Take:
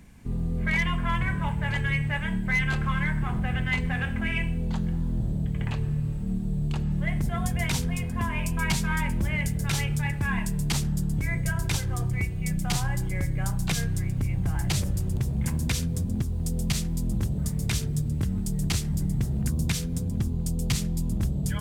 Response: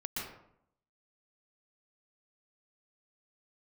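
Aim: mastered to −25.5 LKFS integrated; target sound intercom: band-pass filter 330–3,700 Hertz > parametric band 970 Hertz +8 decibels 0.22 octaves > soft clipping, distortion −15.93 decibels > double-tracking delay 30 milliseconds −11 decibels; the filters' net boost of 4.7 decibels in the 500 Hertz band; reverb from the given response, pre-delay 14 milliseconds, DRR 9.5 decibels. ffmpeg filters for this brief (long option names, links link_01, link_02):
-filter_complex "[0:a]equalizer=frequency=500:width_type=o:gain=7,asplit=2[link_01][link_02];[1:a]atrim=start_sample=2205,adelay=14[link_03];[link_02][link_03]afir=irnorm=-1:irlink=0,volume=-12dB[link_04];[link_01][link_04]amix=inputs=2:normalize=0,highpass=330,lowpass=3700,equalizer=frequency=970:width_type=o:width=0.22:gain=8,asoftclip=threshold=-23dB,asplit=2[link_05][link_06];[link_06]adelay=30,volume=-11dB[link_07];[link_05][link_07]amix=inputs=2:normalize=0,volume=8dB"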